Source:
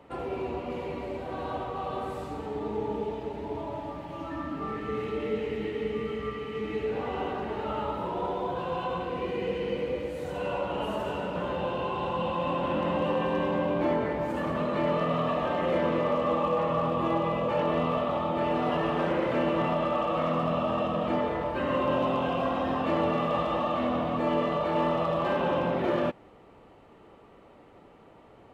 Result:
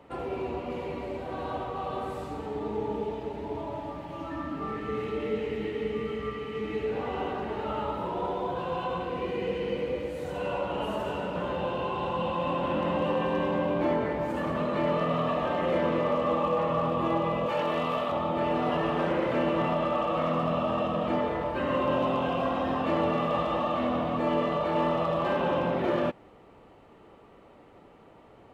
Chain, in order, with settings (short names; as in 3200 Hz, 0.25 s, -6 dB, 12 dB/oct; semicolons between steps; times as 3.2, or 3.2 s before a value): 17.46–18.12 tilt +2 dB/oct